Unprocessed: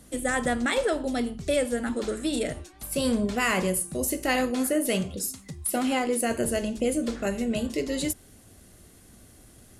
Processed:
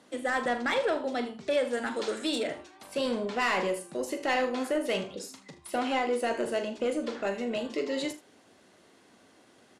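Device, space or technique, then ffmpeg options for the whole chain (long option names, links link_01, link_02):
intercom: -filter_complex "[0:a]asettb=1/sr,asplit=3[link_01][link_02][link_03];[link_01]atrim=end=1.734[link_04];[link_02]atrim=start=1.73:end=2.38,asetpts=PTS-STARTPTS,afade=type=in:duration=0.004:curve=qsin,afade=type=out:start_time=0.646:duration=0.004:curve=qsin,highshelf=frequency=3300:gain=10.5[link_05];[link_03]atrim=start=2.376[link_06];[link_04][link_05]acrossfade=duration=0.004:curve1=hsin:curve2=qsin[link_07];[link_07][link_06]acrossfade=duration=0.004:curve1=qsin:curve2=hsin,highpass=330,lowpass=4300,equalizer=frequency=940:width_type=o:width=0.29:gain=5.5,asoftclip=type=tanh:threshold=-20.5dB,aecho=1:1:41|78:0.266|0.178"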